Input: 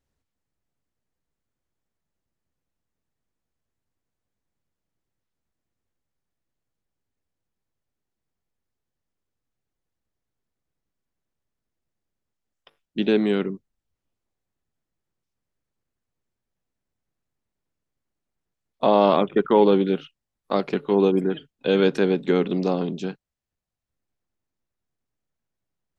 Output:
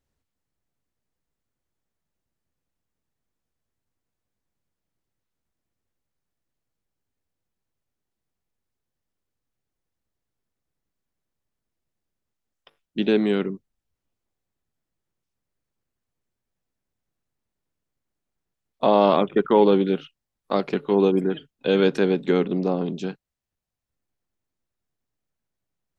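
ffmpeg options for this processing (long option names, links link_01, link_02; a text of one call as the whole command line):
ffmpeg -i in.wav -filter_complex "[0:a]asettb=1/sr,asplit=3[link_01][link_02][link_03];[link_01]atrim=end=22.454[link_04];[link_02]atrim=start=22.45:end=22.86,asetpts=PTS-STARTPTS,afade=type=in:duration=0.004:curve=qsin,afade=type=out:start_time=0.406:duration=0.004:curve=qsin,highshelf=frequency=2200:gain=-10[link_05];[link_03]atrim=start=22.856[link_06];[link_04][link_05]acrossfade=duration=0.004:curve1=hsin:curve2=qsin[link_07];[link_07][link_06]acrossfade=duration=0.004:curve1=qsin:curve2=hsin" out.wav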